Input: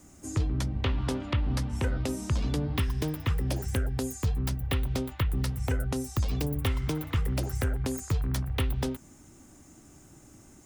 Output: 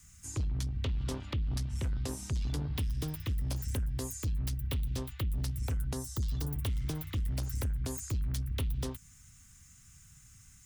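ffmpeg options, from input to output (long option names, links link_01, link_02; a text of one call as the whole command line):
ffmpeg -i in.wav -filter_complex "[0:a]asettb=1/sr,asplit=3[link_01][link_02][link_03];[link_01]atrim=end=5.934[link_04];[link_02]atrim=start=5.93:end=6.48,asetpts=PTS-STARTPTS,afade=type=in:duration=0.004:curve=qsin,afade=type=out:start_time=0.546:duration=0.004:curve=qsin,equalizer=frequency=2400:width=3.9:gain=-12.5[link_05];[link_03]atrim=start=6.476[link_06];[link_04][link_05]acrossfade=duration=0.004:curve1=hsin:curve2=qsin[link_07];[link_07][link_06]acrossfade=duration=0.004:curve1=qsin:curve2=hsin,acrossover=split=160|1300|3000[link_08][link_09][link_10][link_11];[link_09]aeval=exprs='0.0944*(cos(1*acos(clip(val(0)/0.0944,-1,1)))-cos(1*PI/2))+0.0237*(cos(3*acos(clip(val(0)/0.0944,-1,1)))-cos(3*PI/2))+0.00188*(cos(5*acos(clip(val(0)/0.0944,-1,1)))-cos(5*PI/2))+0.00531*(cos(7*acos(clip(val(0)/0.0944,-1,1)))-cos(7*PI/2))':channel_layout=same[link_12];[link_10]acompressor=threshold=-54dB:ratio=6[link_13];[link_08][link_12][link_13][link_11]amix=inputs=4:normalize=0,asoftclip=type=tanh:threshold=-27.5dB" out.wav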